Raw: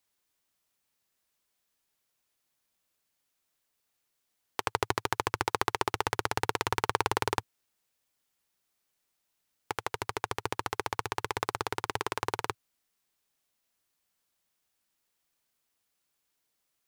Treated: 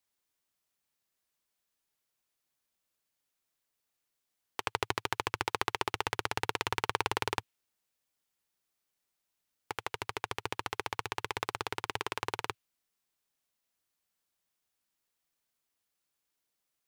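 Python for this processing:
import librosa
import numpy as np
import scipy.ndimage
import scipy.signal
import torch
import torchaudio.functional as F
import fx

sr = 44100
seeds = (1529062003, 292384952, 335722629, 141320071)

y = fx.dynamic_eq(x, sr, hz=2800.0, q=1.2, threshold_db=-50.0, ratio=4.0, max_db=6)
y = y * 10.0 ** (-4.5 / 20.0)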